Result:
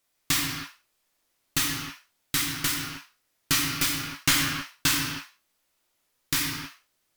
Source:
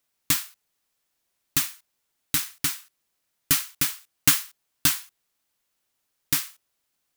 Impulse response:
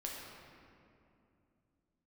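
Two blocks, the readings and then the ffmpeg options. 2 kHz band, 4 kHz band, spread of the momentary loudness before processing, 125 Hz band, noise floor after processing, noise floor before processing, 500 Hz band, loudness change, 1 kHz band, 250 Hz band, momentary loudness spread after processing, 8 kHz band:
+4.5 dB, +3.0 dB, 12 LU, +3.0 dB, -74 dBFS, -77 dBFS, +5.0 dB, -2.0 dB, +5.0 dB, +4.5 dB, 14 LU, -1.5 dB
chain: -filter_complex "[0:a]acrossover=split=6600[a][b];[b]acompressor=threshold=-24dB:ratio=4:attack=1:release=60[c];[a][c]amix=inputs=2:normalize=0,aeval=exprs='clip(val(0),-1,0.15)':c=same[d];[1:a]atrim=start_sample=2205,afade=t=out:st=0.41:d=0.01,atrim=end_sample=18522,asetrate=48510,aresample=44100[e];[d][e]afir=irnorm=-1:irlink=0,volume=6dB" -ar 48000 -c:a libvorbis -b:a 192k

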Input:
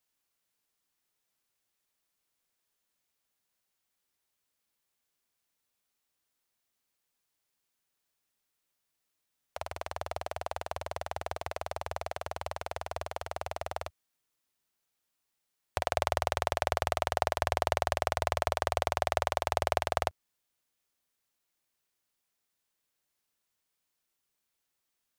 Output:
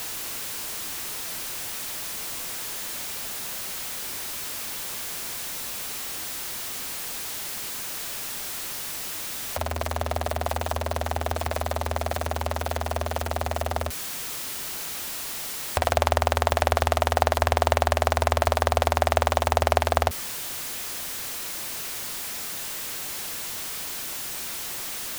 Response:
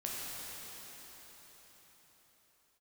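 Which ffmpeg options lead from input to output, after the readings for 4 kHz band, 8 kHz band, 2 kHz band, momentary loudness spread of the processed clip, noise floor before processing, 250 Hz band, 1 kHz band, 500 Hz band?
+12.0 dB, +17.5 dB, +9.0 dB, 7 LU, -83 dBFS, +14.0 dB, +8.0 dB, +8.5 dB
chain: -af "aeval=exprs='val(0)+0.5*0.0211*sgn(val(0))':c=same,volume=7dB"

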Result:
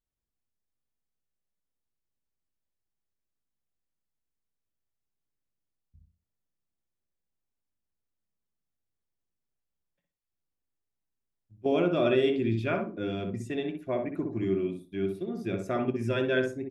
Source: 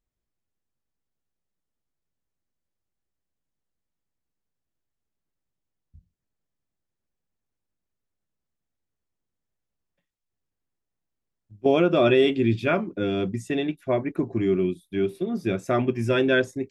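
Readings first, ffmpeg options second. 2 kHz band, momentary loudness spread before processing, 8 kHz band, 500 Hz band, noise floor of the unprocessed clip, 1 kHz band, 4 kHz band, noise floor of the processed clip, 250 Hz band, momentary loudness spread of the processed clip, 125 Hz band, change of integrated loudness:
-7.0 dB, 9 LU, n/a, -5.5 dB, -84 dBFS, -6.5 dB, -7.0 dB, -85 dBFS, -5.5 dB, 9 LU, -5.0 dB, -6.0 dB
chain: -filter_complex "[0:a]asplit=2[a][b];[b]adelay=62,lowpass=f=1.3k:p=1,volume=-3dB,asplit=2[c][d];[d]adelay=62,lowpass=f=1.3k:p=1,volume=0.31,asplit=2[e][f];[f]adelay=62,lowpass=f=1.3k:p=1,volume=0.31,asplit=2[g][h];[h]adelay=62,lowpass=f=1.3k:p=1,volume=0.31[i];[a][c][e][g][i]amix=inputs=5:normalize=0,volume=-7.5dB"

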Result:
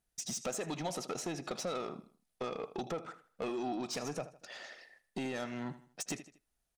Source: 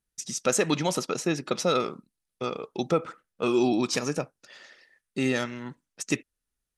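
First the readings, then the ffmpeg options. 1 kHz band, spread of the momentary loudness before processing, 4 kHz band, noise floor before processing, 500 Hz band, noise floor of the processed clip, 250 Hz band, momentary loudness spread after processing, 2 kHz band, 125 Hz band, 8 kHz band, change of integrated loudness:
-9.0 dB, 12 LU, -10.5 dB, -85 dBFS, -11.5 dB, -83 dBFS, -12.5 dB, 11 LU, -12.0 dB, -12.0 dB, -9.0 dB, -12.0 dB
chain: -filter_complex "[0:a]acompressor=threshold=-33dB:ratio=12,asplit=2[a][b];[b]aecho=0:1:79|158|237:0.133|0.0507|0.0193[c];[a][c]amix=inputs=2:normalize=0,asoftclip=type=tanh:threshold=-33.5dB,equalizer=f=710:w=3.3:g=10,volume=1dB"

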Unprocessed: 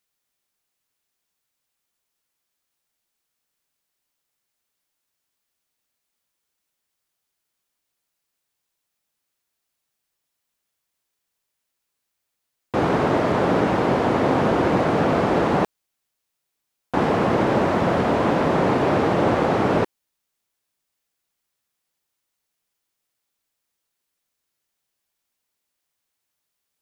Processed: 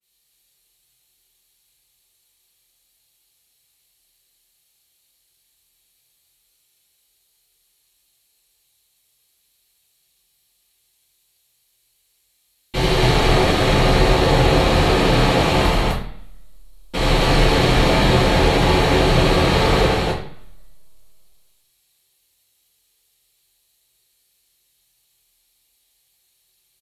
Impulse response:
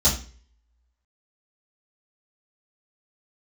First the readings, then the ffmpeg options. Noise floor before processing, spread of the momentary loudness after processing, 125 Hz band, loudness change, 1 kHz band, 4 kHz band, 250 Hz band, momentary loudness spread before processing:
-80 dBFS, 7 LU, +8.0 dB, +3.5 dB, +2.0 dB, +15.5 dB, +1.0 dB, 4 LU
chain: -filter_complex "[0:a]acrossover=split=2600[a][b];[a]alimiter=limit=-16dB:level=0:latency=1[c];[c][b]amix=inputs=2:normalize=0,crystalizer=i=4:c=0,aeval=exprs='0.708*(cos(1*acos(clip(val(0)/0.708,-1,1)))-cos(1*PI/2))+0.224*(cos(4*acos(clip(val(0)/0.708,-1,1)))-cos(4*PI/2))+0.2*(cos(7*acos(clip(val(0)/0.708,-1,1)))-cos(7*PI/2))+0.0794*(cos(8*acos(clip(val(0)/0.708,-1,1)))-cos(8*PI/2))':c=same,aecho=1:1:81.63|256.6:0.794|1[d];[1:a]atrim=start_sample=2205,asetrate=27342,aresample=44100[e];[d][e]afir=irnorm=-1:irlink=0,adynamicequalizer=threshold=0.0631:dfrequency=2000:dqfactor=0.7:tfrequency=2000:tqfactor=0.7:attack=5:release=100:ratio=0.375:range=2:mode=cutabove:tftype=highshelf,volume=-17dB"

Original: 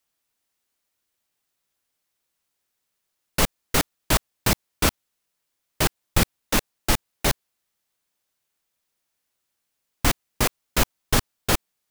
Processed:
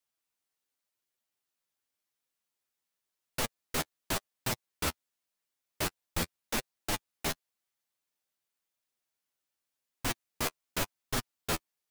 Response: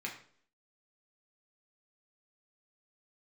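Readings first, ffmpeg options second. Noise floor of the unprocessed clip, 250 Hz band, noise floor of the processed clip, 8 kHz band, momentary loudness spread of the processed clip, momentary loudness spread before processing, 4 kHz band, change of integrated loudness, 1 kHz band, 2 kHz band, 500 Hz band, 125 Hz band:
-79 dBFS, -12.0 dB, under -85 dBFS, -10.5 dB, 2 LU, 3 LU, -10.5 dB, -11.0 dB, -10.5 dB, -10.0 dB, -10.5 dB, -13.5 dB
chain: -af "lowshelf=f=140:g=-5.5,alimiter=limit=-11dB:level=0:latency=1:release=26,flanger=delay=7.1:depth=6.3:regen=13:speed=0.9:shape=triangular,volume=-5.5dB"

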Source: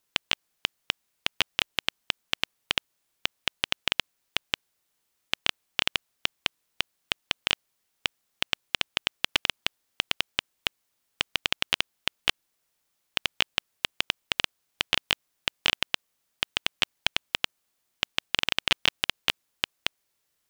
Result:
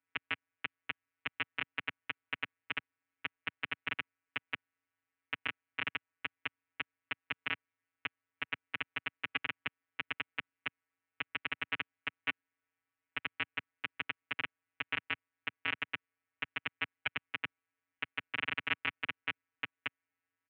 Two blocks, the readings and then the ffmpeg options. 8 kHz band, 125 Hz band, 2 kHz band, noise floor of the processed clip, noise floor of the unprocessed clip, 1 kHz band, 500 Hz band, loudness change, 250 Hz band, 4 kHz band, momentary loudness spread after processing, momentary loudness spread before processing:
under -40 dB, -9.0 dB, -6.0 dB, under -85 dBFS, -77 dBFS, -7.5 dB, -12.0 dB, -10.5 dB, -6.5 dB, -16.5 dB, 7 LU, 7 LU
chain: -af "afftfilt=real='hypot(re,im)*cos(PI*b)':imag='0':win_size=1024:overlap=0.75,highpass=f=190:t=q:w=0.5412,highpass=f=190:t=q:w=1.307,lowpass=f=2.5k:t=q:w=0.5176,lowpass=f=2.5k:t=q:w=0.7071,lowpass=f=2.5k:t=q:w=1.932,afreqshift=-68,firequalizer=gain_entry='entry(260,0);entry(580,-8);entry(1400,2)':delay=0.05:min_phase=1,volume=-3dB"

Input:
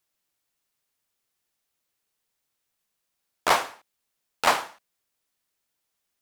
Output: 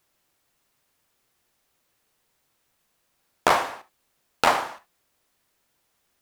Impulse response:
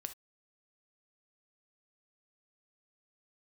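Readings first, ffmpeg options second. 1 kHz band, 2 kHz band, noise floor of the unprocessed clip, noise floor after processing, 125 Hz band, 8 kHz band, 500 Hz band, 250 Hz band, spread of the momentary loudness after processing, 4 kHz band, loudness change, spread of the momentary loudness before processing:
+2.0 dB, +1.0 dB, -80 dBFS, -73 dBFS, +5.5 dB, -1.5 dB, +3.0 dB, +4.5 dB, 14 LU, -0.5 dB, +0.5 dB, 15 LU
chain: -filter_complex "[0:a]acompressor=threshold=-29dB:ratio=4,asplit=2[a][b];[1:a]atrim=start_sample=2205,highshelf=f=2.9k:g=-12[c];[b][c]afir=irnorm=-1:irlink=0,volume=10.5dB[d];[a][d]amix=inputs=2:normalize=0,volume=2.5dB"

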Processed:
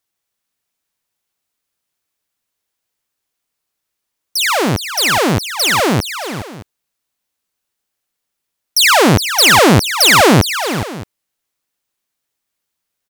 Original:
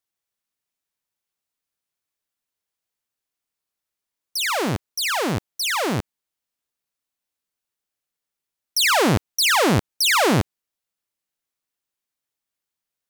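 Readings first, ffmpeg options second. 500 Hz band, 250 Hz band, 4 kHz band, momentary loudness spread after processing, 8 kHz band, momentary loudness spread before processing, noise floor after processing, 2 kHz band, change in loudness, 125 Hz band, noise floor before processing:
+9.0 dB, +9.0 dB, +9.0 dB, 15 LU, +9.0 dB, 9 LU, -77 dBFS, +9.0 dB, +8.5 dB, +9.0 dB, under -85 dBFS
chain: -af "aecho=1:1:416|620:0.335|0.141,volume=8dB"

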